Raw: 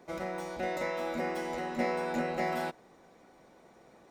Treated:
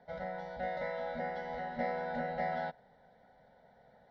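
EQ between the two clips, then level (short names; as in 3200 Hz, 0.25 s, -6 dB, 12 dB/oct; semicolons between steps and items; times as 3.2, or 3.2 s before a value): air absorption 250 m; fixed phaser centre 1700 Hz, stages 8; 0.0 dB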